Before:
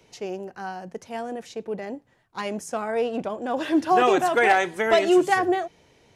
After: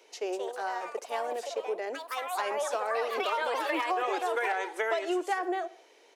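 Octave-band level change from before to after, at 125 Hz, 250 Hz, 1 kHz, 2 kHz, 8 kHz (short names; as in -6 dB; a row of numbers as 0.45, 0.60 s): under -30 dB, -13.5 dB, -6.5 dB, -7.0 dB, -4.5 dB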